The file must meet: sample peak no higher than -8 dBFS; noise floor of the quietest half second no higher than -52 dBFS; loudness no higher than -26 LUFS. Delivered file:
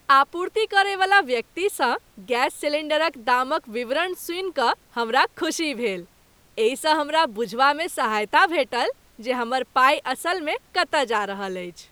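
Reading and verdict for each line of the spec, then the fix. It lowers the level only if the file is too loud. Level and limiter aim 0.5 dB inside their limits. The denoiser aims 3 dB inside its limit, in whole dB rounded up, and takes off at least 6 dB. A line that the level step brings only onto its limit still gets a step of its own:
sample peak -4.5 dBFS: fail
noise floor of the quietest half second -57 dBFS: pass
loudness -22.5 LUFS: fail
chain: trim -4 dB

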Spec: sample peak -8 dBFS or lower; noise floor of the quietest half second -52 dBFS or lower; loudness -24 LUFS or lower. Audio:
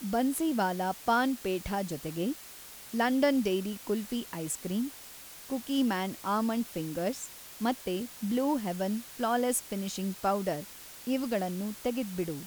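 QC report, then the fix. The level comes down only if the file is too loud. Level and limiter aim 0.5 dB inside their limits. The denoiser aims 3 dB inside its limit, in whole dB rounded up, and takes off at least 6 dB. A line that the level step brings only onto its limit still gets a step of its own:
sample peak -14.0 dBFS: pass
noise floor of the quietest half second -48 dBFS: fail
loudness -31.5 LUFS: pass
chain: noise reduction 7 dB, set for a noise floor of -48 dBFS

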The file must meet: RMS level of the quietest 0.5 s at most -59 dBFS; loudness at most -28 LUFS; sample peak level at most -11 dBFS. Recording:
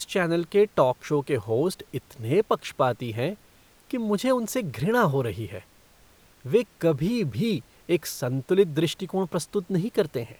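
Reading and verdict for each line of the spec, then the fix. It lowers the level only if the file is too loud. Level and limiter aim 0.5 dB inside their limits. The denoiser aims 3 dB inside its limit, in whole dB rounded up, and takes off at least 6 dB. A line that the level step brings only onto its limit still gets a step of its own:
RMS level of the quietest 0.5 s -56 dBFS: fail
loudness -26.0 LUFS: fail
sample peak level -6.5 dBFS: fail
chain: noise reduction 6 dB, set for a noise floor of -56 dBFS; trim -2.5 dB; peak limiter -11.5 dBFS

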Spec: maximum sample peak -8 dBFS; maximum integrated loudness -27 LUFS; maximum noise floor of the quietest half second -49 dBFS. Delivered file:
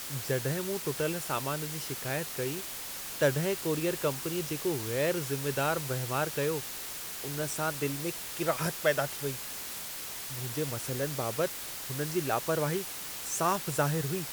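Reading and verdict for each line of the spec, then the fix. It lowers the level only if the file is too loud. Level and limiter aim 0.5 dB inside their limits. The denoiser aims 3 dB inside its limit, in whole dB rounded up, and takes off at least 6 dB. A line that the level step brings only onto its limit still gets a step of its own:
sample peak -13.5 dBFS: pass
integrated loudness -32.0 LUFS: pass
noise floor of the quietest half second -40 dBFS: fail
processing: noise reduction 12 dB, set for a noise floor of -40 dBFS

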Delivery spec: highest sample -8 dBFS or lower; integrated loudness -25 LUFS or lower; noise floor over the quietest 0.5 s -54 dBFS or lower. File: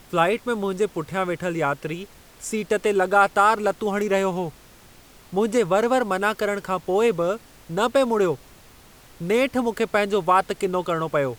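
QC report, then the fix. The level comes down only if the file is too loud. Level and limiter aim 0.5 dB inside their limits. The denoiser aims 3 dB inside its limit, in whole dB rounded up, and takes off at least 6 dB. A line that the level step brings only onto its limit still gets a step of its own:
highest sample -4.5 dBFS: fail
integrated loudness -22.5 LUFS: fail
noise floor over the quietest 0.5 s -49 dBFS: fail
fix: noise reduction 6 dB, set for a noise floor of -49 dBFS; trim -3 dB; peak limiter -8.5 dBFS

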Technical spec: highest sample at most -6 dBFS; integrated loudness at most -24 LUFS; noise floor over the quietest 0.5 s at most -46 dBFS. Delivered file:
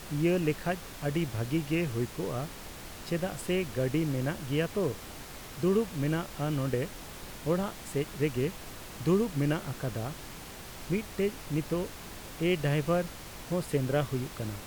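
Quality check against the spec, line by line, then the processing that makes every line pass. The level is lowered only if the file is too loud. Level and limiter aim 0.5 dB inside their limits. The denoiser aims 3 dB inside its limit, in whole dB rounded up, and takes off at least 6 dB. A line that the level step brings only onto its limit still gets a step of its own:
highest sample -15.5 dBFS: pass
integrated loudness -31.5 LUFS: pass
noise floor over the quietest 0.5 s -44 dBFS: fail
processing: noise reduction 6 dB, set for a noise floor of -44 dBFS

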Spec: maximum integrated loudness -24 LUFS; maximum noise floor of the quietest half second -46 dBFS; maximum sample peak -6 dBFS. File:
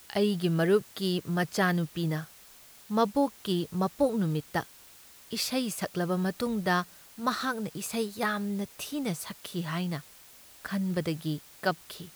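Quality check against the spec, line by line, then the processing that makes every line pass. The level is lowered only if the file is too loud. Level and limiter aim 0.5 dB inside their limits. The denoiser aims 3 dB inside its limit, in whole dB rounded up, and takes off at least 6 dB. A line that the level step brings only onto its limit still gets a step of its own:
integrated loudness -30.5 LUFS: pass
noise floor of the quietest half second -53 dBFS: pass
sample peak -13.5 dBFS: pass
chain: none needed

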